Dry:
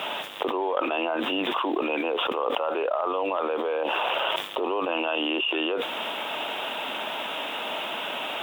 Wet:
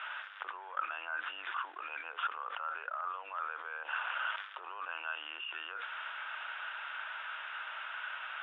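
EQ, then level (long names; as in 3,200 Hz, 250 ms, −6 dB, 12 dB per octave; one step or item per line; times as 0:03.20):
four-pole ladder band-pass 1,600 Hz, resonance 70%
high-frequency loss of the air 150 metres
+1.5 dB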